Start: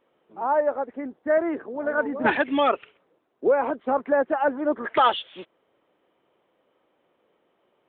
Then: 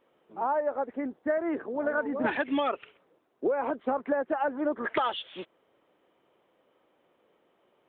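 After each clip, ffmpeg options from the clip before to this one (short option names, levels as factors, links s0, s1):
-af "acompressor=threshold=0.0631:ratio=10"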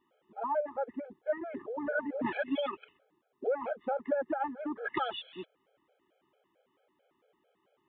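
-af "afftfilt=real='re*gt(sin(2*PI*4.5*pts/sr)*(1-2*mod(floor(b*sr/1024/430),2)),0)':imag='im*gt(sin(2*PI*4.5*pts/sr)*(1-2*mod(floor(b*sr/1024/430),2)),0)':win_size=1024:overlap=0.75,volume=0.794"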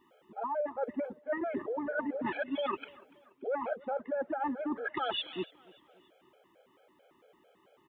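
-af "areverse,acompressor=threshold=0.0112:ratio=12,areverse,aecho=1:1:289|578|867:0.0668|0.0327|0.016,volume=2.66"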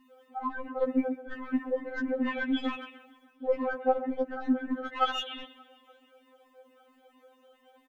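-af "aecho=1:1:134:0.224,aeval=exprs='0.0891*(cos(1*acos(clip(val(0)/0.0891,-1,1)))-cos(1*PI/2))+0.0112*(cos(4*acos(clip(val(0)/0.0891,-1,1)))-cos(4*PI/2))+0.00501*(cos(6*acos(clip(val(0)/0.0891,-1,1)))-cos(6*PI/2))':c=same,afftfilt=real='re*3.46*eq(mod(b,12),0)':imag='im*3.46*eq(mod(b,12),0)':win_size=2048:overlap=0.75,volume=2.11"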